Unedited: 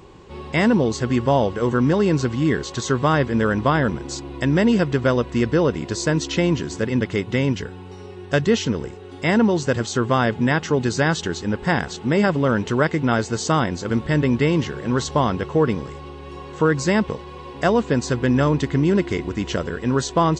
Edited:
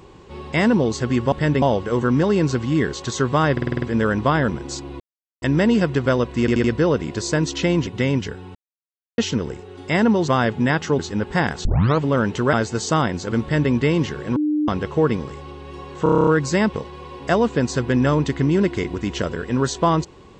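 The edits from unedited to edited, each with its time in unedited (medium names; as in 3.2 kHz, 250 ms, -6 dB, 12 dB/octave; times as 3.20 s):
3.22 s: stutter 0.05 s, 7 plays
4.40 s: insert silence 0.42 s
5.38 s: stutter 0.08 s, 4 plays
6.61–7.21 s: delete
7.89–8.52 s: mute
9.62–10.09 s: delete
10.80–11.31 s: delete
11.97 s: tape start 0.37 s
12.85–13.11 s: delete
14.00–14.30 s: copy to 1.32 s
14.94–15.26 s: bleep 301 Hz -17 dBFS
16.61 s: stutter 0.03 s, 9 plays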